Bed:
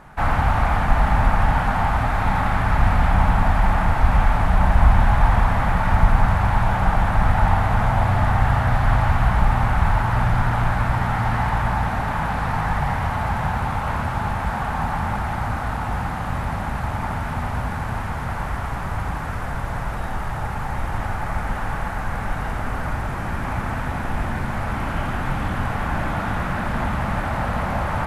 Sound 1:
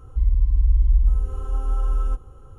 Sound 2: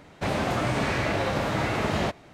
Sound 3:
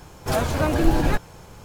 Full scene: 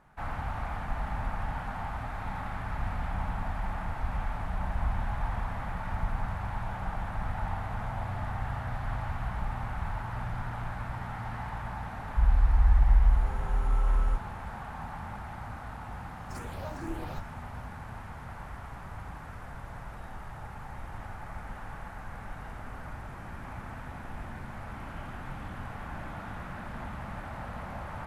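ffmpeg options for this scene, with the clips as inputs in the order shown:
-filter_complex "[0:a]volume=0.158[s0];[3:a]asplit=2[s1][s2];[s2]afreqshift=2.1[s3];[s1][s3]amix=inputs=2:normalize=1[s4];[1:a]atrim=end=2.58,asetpts=PTS-STARTPTS,volume=0.631,afade=t=in:d=0.004:c=hsin,afade=t=out:st=2.576:d=0.004:c=hsin,adelay=12010[s5];[s4]atrim=end=1.64,asetpts=PTS-STARTPTS,volume=0.158,afade=t=in:d=0.004:c=hsin,afade=t=out:st=1.636:d=0.004:c=hsin,adelay=16030[s6];[s0][s5][s6]amix=inputs=3:normalize=0"

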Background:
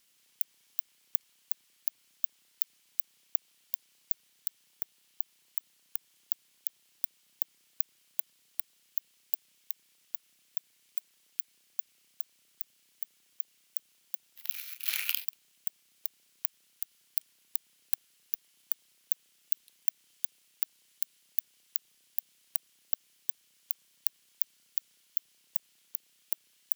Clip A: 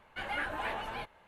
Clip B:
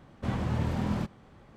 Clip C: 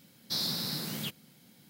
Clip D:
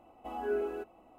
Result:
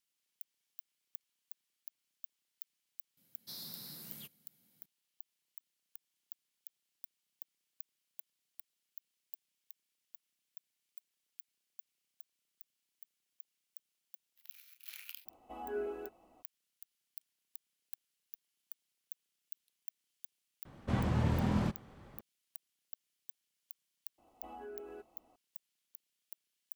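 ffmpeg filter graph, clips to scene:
-filter_complex "[4:a]asplit=2[s0][s1];[0:a]volume=0.133[s2];[3:a]equalizer=f=13000:t=o:w=0.87:g=12.5[s3];[s1]acompressor=threshold=0.0178:ratio=6:attack=3.2:release=140:knee=1:detection=peak[s4];[s3]atrim=end=1.69,asetpts=PTS-STARTPTS,volume=0.133,afade=t=in:d=0.004:c=hsin,afade=t=out:st=1.686:d=0.004:c=hsin,adelay=139797S[s5];[s0]atrim=end=1.18,asetpts=PTS-STARTPTS,volume=0.501,afade=t=in:d=0.02,afade=t=out:st=1.16:d=0.02,adelay=15250[s6];[2:a]atrim=end=1.56,asetpts=PTS-STARTPTS,volume=0.841,afade=t=in:d=0.004:c=hsin,afade=t=out:st=1.556:d=0.004:c=hsin,adelay=20650[s7];[s4]atrim=end=1.18,asetpts=PTS-STARTPTS,volume=0.355,afade=t=in:d=0.004:c=hsin,afade=t=out:st=1.176:d=0.004:c=hsin,adelay=24180[s8];[s2][s5][s6][s7][s8]amix=inputs=5:normalize=0"

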